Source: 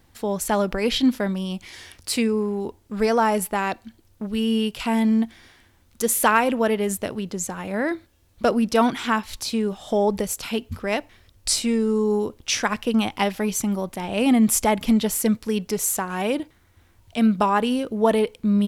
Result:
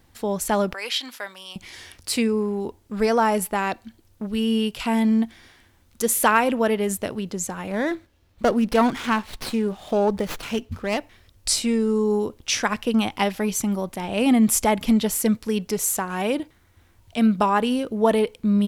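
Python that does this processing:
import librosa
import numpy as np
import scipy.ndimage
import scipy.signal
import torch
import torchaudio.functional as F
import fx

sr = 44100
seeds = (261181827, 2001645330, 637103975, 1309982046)

y = fx.highpass(x, sr, hz=990.0, slope=12, at=(0.73, 1.56))
y = fx.running_max(y, sr, window=5, at=(7.71, 10.98))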